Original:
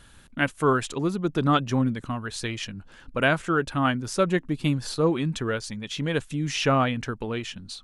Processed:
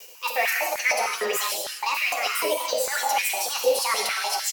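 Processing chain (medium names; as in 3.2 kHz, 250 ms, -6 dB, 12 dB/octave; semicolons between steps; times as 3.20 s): gate with hold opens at -43 dBFS; tilt EQ +4 dB/octave; reverse; compression 6:1, threshold -32 dBFS, peak gain reduction 16.5 dB; reverse; waveshaping leveller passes 2; rotary cabinet horn 1.2 Hz, later 8 Hz, at 4.71 s; doubling 17 ms -5 dB; on a send: delay 755 ms -20.5 dB; on the sum: gated-style reverb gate 460 ms flat, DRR -1 dB; speed mistake 45 rpm record played at 78 rpm; step-sequenced high-pass 6.6 Hz 500–1800 Hz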